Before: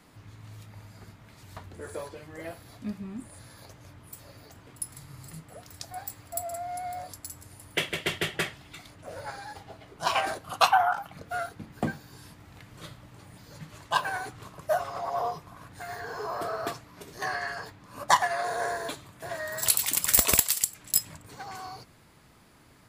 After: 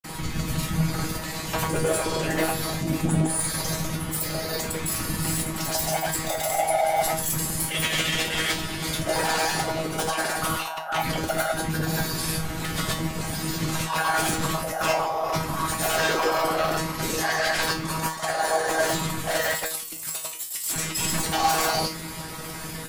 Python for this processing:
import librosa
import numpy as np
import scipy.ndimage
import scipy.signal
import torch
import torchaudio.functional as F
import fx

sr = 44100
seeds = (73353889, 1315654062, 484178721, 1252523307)

y = fx.high_shelf(x, sr, hz=6000.0, db=10.0)
y = fx.over_compress(y, sr, threshold_db=-37.0, ratio=-1.0)
y = fx.fold_sine(y, sr, drive_db=18, ceiling_db=-11.5)
y = fx.granulator(y, sr, seeds[0], grain_ms=100.0, per_s=20.0, spray_ms=100.0, spread_st=0)
y = fx.whisperise(y, sr, seeds[1])
y = fx.comb_fb(y, sr, f0_hz=160.0, decay_s=0.31, harmonics='all', damping=0.0, mix_pct=90)
y = y * 10.0 ** (3.5 / 20.0)